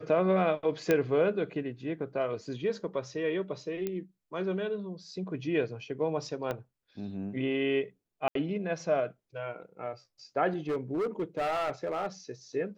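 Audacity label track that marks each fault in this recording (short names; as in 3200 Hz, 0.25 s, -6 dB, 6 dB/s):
0.910000	0.910000	pop -12 dBFS
3.870000	3.870000	pop -20 dBFS
6.510000	6.510000	pop -20 dBFS
8.280000	8.350000	gap 73 ms
10.690000	12.070000	clipped -27 dBFS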